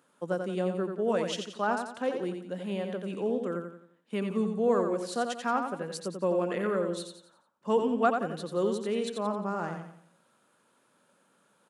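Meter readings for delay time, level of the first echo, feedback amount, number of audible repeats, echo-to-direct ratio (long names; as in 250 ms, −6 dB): 88 ms, −6.0 dB, 40%, 4, −5.5 dB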